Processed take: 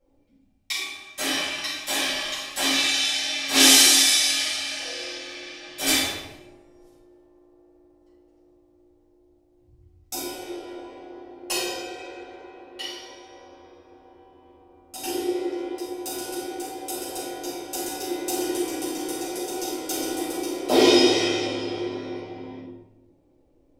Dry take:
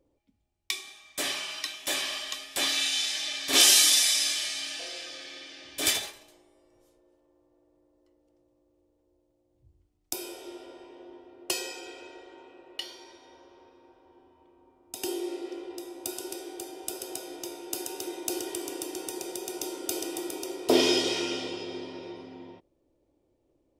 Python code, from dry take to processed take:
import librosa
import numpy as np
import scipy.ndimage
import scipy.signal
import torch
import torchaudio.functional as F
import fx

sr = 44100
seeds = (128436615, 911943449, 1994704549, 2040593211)

y = fx.room_shoebox(x, sr, seeds[0], volume_m3=340.0, walls='mixed', distance_m=6.6)
y = y * 10.0 ** (-8.5 / 20.0)